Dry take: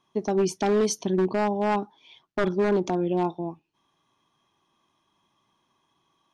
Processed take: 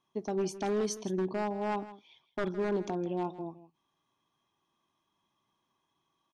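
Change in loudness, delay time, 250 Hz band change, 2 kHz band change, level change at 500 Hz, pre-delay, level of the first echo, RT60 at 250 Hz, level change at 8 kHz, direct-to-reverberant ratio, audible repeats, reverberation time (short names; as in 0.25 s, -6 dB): -8.5 dB, 0.161 s, -8.5 dB, -8.5 dB, -8.5 dB, none, -15.5 dB, none, -8.5 dB, none, 1, none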